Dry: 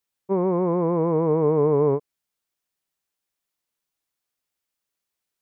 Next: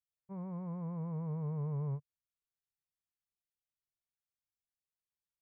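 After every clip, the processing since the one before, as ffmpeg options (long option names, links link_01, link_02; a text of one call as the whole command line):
ffmpeg -i in.wav -af "firequalizer=gain_entry='entry(140,0);entry(300,-30);entry(570,-18);entry(1600,-14)':delay=0.05:min_phase=1,volume=-6.5dB" out.wav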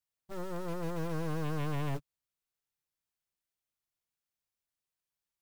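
ffmpeg -i in.wav -af "aeval=exprs='0.0316*(cos(1*acos(clip(val(0)/0.0316,-1,1)))-cos(1*PI/2))+0.00891*(cos(4*acos(clip(val(0)/0.0316,-1,1)))-cos(4*PI/2))+0.00355*(cos(6*acos(clip(val(0)/0.0316,-1,1)))-cos(6*PI/2))+0.01*(cos(7*acos(clip(val(0)/0.0316,-1,1)))-cos(7*PI/2))+0.00708*(cos(8*acos(clip(val(0)/0.0316,-1,1)))-cos(8*PI/2))':channel_layout=same,acrusher=bits=4:mode=log:mix=0:aa=0.000001" out.wav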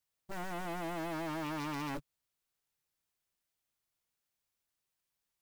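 ffmpeg -i in.wav -af "aeval=exprs='0.0133*(abs(mod(val(0)/0.0133+3,4)-2)-1)':channel_layout=same,volume=4dB" out.wav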